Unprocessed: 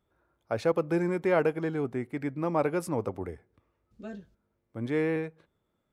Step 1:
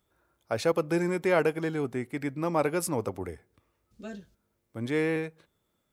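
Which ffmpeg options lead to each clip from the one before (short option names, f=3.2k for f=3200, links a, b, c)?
-af "highshelf=f=3.1k:g=11.5"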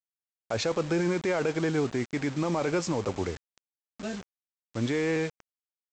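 -af "acontrast=28,alimiter=limit=-18.5dB:level=0:latency=1:release=20,aresample=16000,acrusher=bits=6:mix=0:aa=0.000001,aresample=44100"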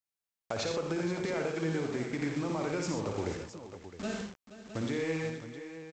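-af "acompressor=threshold=-32dB:ratio=6,aecho=1:1:56|86|124|477|549|662:0.501|0.473|0.376|0.2|0.1|0.266"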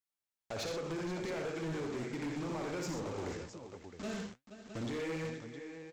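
-af "flanger=delay=2.8:depth=8.5:regen=72:speed=1.3:shape=triangular,asoftclip=type=hard:threshold=-36dB,volume=1.5dB"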